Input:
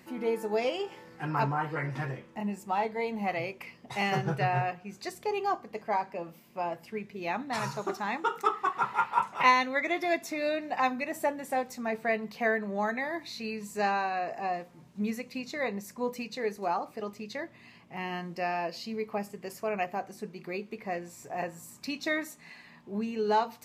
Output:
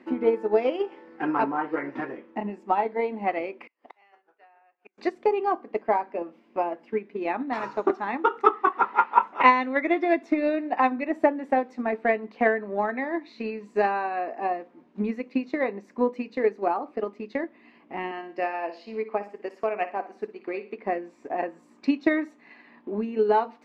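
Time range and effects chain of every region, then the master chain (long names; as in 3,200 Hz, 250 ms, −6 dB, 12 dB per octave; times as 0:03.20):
0:03.67–0:04.98: high-pass filter 690 Hz + gate with flip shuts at −39 dBFS, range −30 dB
0:18.11–0:20.77: high-pass filter 480 Hz 6 dB per octave + flutter between parallel walls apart 10.1 metres, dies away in 0.39 s
whole clip: low-pass filter 2,300 Hz 12 dB per octave; low shelf with overshoot 190 Hz −13.5 dB, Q 3; transient designer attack +7 dB, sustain −2 dB; level +1.5 dB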